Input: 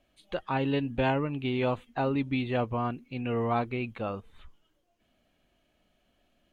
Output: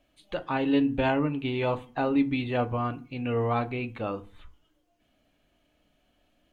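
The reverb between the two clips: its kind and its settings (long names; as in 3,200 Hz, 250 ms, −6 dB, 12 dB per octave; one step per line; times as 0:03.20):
feedback delay network reverb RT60 0.36 s, low-frequency decay 1.3×, high-frequency decay 0.6×, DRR 9 dB
level +1 dB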